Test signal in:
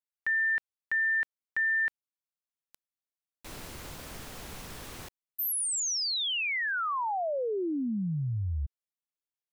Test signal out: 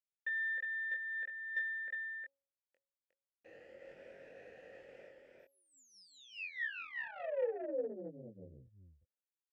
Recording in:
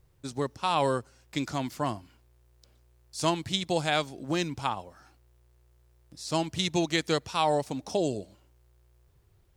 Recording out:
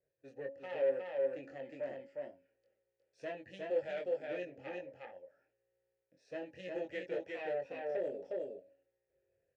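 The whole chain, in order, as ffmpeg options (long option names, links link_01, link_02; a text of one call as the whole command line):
ffmpeg -i in.wav -filter_complex "[0:a]afftfilt=real='re*pow(10,7/40*sin(2*PI*(1.6*log(max(b,1)*sr/1024/100)/log(2)-(0.98)*(pts-256)/sr)))':imag='im*pow(10,7/40*sin(2*PI*(1.6*log(max(b,1)*sr/1024/100)/log(2)-(0.98)*(pts-256)/sr)))':win_size=1024:overlap=0.75,equalizer=frequency=3700:width_type=o:width=1:gain=-13,asplit=2[link_01][link_02];[link_02]aecho=0:1:360:0.708[link_03];[link_01][link_03]amix=inputs=2:normalize=0,agate=range=-33dB:threshold=-60dB:ratio=3:release=174:detection=rms,lowpass=5000,asplit=2[link_04][link_05];[link_05]adelay=22,volume=-4dB[link_06];[link_04][link_06]amix=inputs=2:normalize=0,bandreject=frequency=276.7:width_type=h:width=4,bandreject=frequency=553.4:width_type=h:width=4,bandreject=frequency=830.1:width_type=h:width=4,aeval=exprs='(tanh(14.1*val(0)+0.45)-tanh(0.45))/14.1':channel_layout=same,asplit=3[link_07][link_08][link_09];[link_07]bandpass=frequency=530:width_type=q:width=8,volume=0dB[link_10];[link_08]bandpass=frequency=1840:width_type=q:width=8,volume=-6dB[link_11];[link_09]bandpass=frequency=2480:width_type=q:width=8,volume=-9dB[link_12];[link_10][link_11][link_12]amix=inputs=3:normalize=0,volume=1.5dB" out.wav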